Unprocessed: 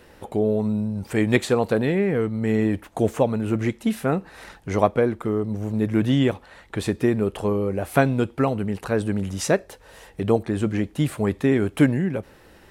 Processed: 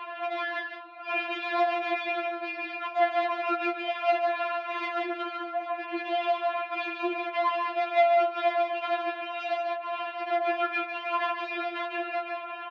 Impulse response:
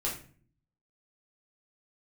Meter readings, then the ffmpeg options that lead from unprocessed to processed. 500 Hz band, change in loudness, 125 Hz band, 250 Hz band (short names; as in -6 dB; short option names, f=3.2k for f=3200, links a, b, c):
-5.5 dB, -6.0 dB, under -40 dB, -17.5 dB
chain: -filter_complex "[0:a]equalizer=f=310:w=0.89:g=-13.5,asplit=2[a][b];[b]acompressor=threshold=-36dB:ratio=6,volume=1dB[c];[a][c]amix=inputs=2:normalize=0,asplit=2[d][e];[e]highpass=f=720:p=1,volume=33dB,asoftclip=type=tanh:threshold=-2dB[f];[d][f]amix=inputs=2:normalize=0,lowpass=f=1.5k:p=1,volume=-6dB,asplit=3[g][h][i];[g]bandpass=f=730:t=q:w=8,volume=0dB[j];[h]bandpass=f=1.09k:t=q:w=8,volume=-6dB[k];[i]bandpass=f=2.44k:t=q:w=8,volume=-9dB[l];[j][k][l]amix=inputs=3:normalize=0,aeval=exprs='(tanh(31.6*val(0)+0.4)-tanh(0.4))/31.6':c=same,highpass=120,equalizer=f=430:t=q:w=4:g=-5,equalizer=f=810:t=q:w=4:g=-7,equalizer=f=1.6k:t=q:w=4:g=3,lowpass=f=3.6k:w=0.5412,lowpass=f=3.6k:w=1.3066,aecho=1:1:148.7|180.8:0.501|0.282,afftfilt=real='re*4*eq(mod(b,16),0)':imag='im*4*eq(mod(b,16),0)':win_size=2048:overlap=0.75,volume=7dB"